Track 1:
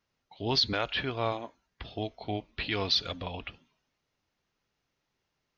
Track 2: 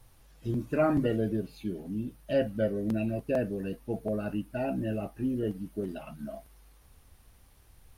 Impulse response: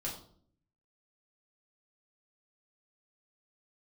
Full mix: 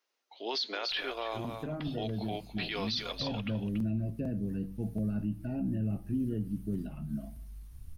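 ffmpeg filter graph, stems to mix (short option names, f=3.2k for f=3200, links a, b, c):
-filter_complex "[0:a]highpass=f=340:w=0.5412,highpass=f=340:w=1.3066,volume=-2dB,asplit=2[a][b];[b]volume=-11dB[c];[1:a]acrossover=split=150|540|1700[d][e][f][g];[d]acompressor=threshold=-50dB:ratio=4[h];[e]acompressor=threshold=-29dB:ratio=4[i];[f]acompressor=threshold=-41dB:ratio=4[j];[g]acompressor=threshold=-59dB:ratio=4[k];[h][i][j][k]amix=inputs=4:normalize=0,asubboost=boost=10.5:cutoff=170,adelay=900,volume=-8dB,asplit=2[l][m];[m]volume=-12dB[n];[2:a]atrim=start_sample=2205[o];[n][o]afir=irnorm=-1:irlink=0[p];[c]aecho=0:1:284:1[q];[a][l][p][q]amix=inputs=4:normalize=0,highshelf=f=5.3k:g=7,alimiter=level_in=0.5dB:limit=-24dB:level=0:latency=1:release=24,volume=-0.5dB"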